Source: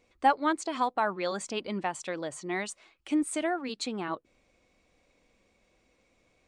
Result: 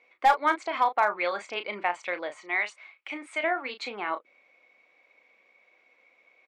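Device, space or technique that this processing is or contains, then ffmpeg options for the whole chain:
megaphone: -filter_complex "[0:a]highpass=600,lowpass=2800,equalizer=frequency=2200:width_type=o:width=0.23:gain=10.5,asoftclip=type=hard:threshold=-18.5dB,asplit=2[link_01][link_02];[link_02]adelay=34,volume=-9.5dB[link_03];[link_01][link_03]amix=inputs=2:normalize=0,asettb=1/sr,asplit=3[link_04][link_05][link_06];[link_04]atrim=end=2.364[link_07];[link_05]atrim=start=2.36:end=3.44,asetpts=PTS-STARTPTS,afade=type=in:duration=0.004:curve=qsin,afade=type=out:start_time=1.076:duration=0.004:curve=qsin,lowshelf=frequency=400:gain=-10.5[link_08];[link_06]atrim=start=3.436[link_09];[link_07][link_08]acrossfade=duration=0.004:curve1=hsin:curve2=qsin[link_10];[link_10][link_09]acrossfade=duration=0.004:curve1=qsin:curve2=hsin,volume=5dB"

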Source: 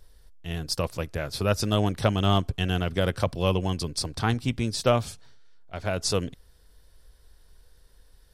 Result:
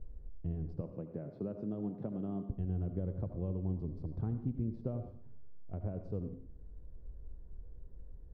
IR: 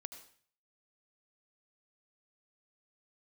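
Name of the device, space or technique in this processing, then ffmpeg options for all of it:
television next door: -filter_complex "[0:a]asettb=1/sr,asplit=3[link_01][link_02][link_03];[link_01]atrim=end=0.814[link_04];[link_02]atrim=start=0.81:end=2.5,asetpts=PTS-STARTPTS,afade=type=in:duration=0.004:curve=qsin,afade=type=out:start_time=1.686:duration=0.004:curve=qsin,highpass=frequency=150:width=0.5412,highpass=frequency=150:width=1.3066[link_05];[link_03]atrim=start=2.496[link_06];[link_04][link_05]acrossfade=duration=0.004:curve1=hsin:curve2=qsin[link_07];[link_07][link_06]acrossfade=duration=0.004:curve1=qsin:curve2=hsin,acompressor=threshold=-41dB:ratio=4,lowpass=330[link_08];[1:a]atrim=start_sample=2205[link_09];[link_08][link_09]afir=irnorm=-1:irlink=0,volume=11.5dB"

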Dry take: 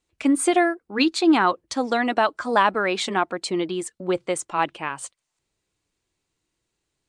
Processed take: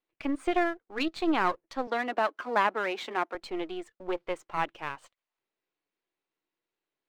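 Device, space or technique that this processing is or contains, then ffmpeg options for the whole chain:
crystal radio: -filter_complex "[0:a]highpass=320,lowpass=2900,aeval=exprs='if(lt(val(0),0),0.447*val(0),val(0))':channel_layout=same,asettb=1/sr,asplit=3[link_01][link_02][link_03];[link_01]atrim=end=1.874[link_04];[link_02]atrim=start=1.87:end=3.35,asetpts=PTS-STARTPTS,afade=type=in:duration=0.004:curve=qsin,afade=type=out:start_time=1.476:duration=0.004:curve=qsin,highpass=frequency=210:width=0.5412,highpass=frequency=210:width=1.3066[link_05];[link_03]atrim=start=3.346[link_06];[link_04][link_05]acrossfade=duration=0.004:curve1=hsin:curve2=qsin[link_07];[link_07][link_06]acrossfade=duration=0.004:curve1=qsin:curve2=hsin,volume=-4.5dB"

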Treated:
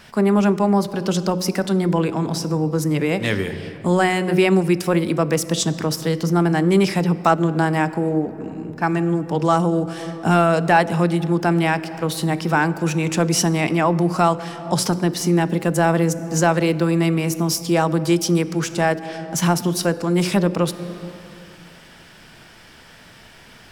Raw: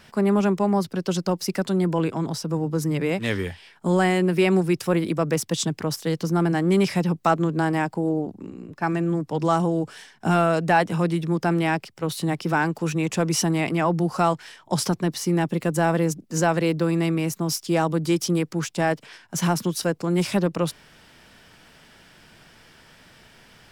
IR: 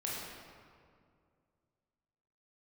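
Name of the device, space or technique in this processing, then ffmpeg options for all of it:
ducked reverb: -filter_complex "[0:a]bandreject=frequency=45.78:width_type=h:width=4,bandreject=frequency=91.56:width_type=h:width=4,bandreject=frequency=137.34:width_type=h:width=4,bandreject=frequency=183.12:width_type=h:width=4,bandreject=frequency=228.9:width_type=h:width=4,bandreject=frequency=274.68:width_type=h:width=4,bandreject=frequency=320.46:width_type=h:width=4,bandreject=frequency=366.24:width_type=h:width=4,bandreject=frequency=412.02:width_type=h:width=4,bandreject=frequency=457.8:width_type=h:width=4,bandreject=frequency=503.58:width_type=h:width=4,bandreject=frequency=549.36:width_type=h:width=4,bandreject=frequency=595.14:width_type=h:width=4,asplit=3[link_01][link_02][link_03];[1:a]atrim=start_sample=2205[link_04];[link_02][link_04]afir=irnorm=-1:irlink=0[link_05];[link_03]apad=whole_len=1045790[link_06];[link_05][link_06]sidechaincompress=threshold=-27dB:ratio=8:attack=12:release=405,volume=-8.5dB[link_07];[link_01][link_07]amix=inputs=2:normalize=0,volume=3.5dB"

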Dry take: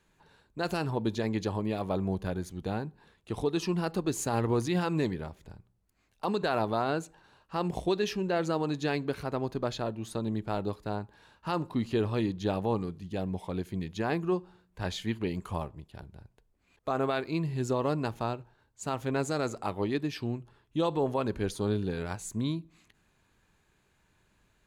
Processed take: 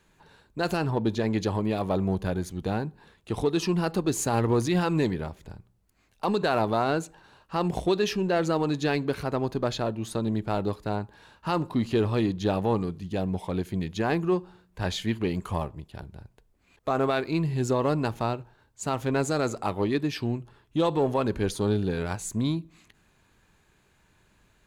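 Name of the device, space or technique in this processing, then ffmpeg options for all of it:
parallel distortion: -filter_complex "[0:a]asettb=1/sr,asplit=3[link_01][link_02][link_03];[link_01]atrim=end=0.754[link_04];[link_02]atrim=start=0.75:end=1.3,asetpts=PTS-STARTPTS,afade=type=in:duration=0.004:curve=qsin,afade=type=out:start_time=0.546:duration=0.004:curve=qsin,highshelf=frequency=4200:gain=-5.5[link_05];[link_03]atrim=start=1.296[link_06];[link_04][link_05]acrossfade=duration=0.004:curve1=hsin:curve2=qsin[link_07];[link_07][link_06]acrossfade=duration=0.004:curve1=qsin:curve2=hsin,asplit=2[link_08][link_09];[link_09]asoftclip=type=hard:threshold=-31.5dB,volume=-10dB[link_10];[link_08][link_10]amix=inputs=2:normalize=0,volume=3dB"

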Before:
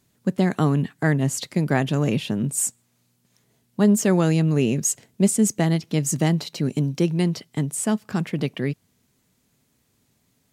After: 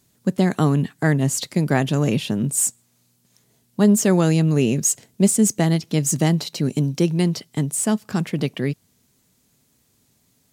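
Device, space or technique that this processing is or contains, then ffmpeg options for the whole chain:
exciter from parts: -filter_complex "[0:a]asplit=2[link_01][link_02];[link_02]highpass=3200,asoftclip=type=tanh:threshold=-29.5dB,volume=-4dB[link_03];[link_01][link_03]amix=inputs=2:normalize=0,volume=2dB"

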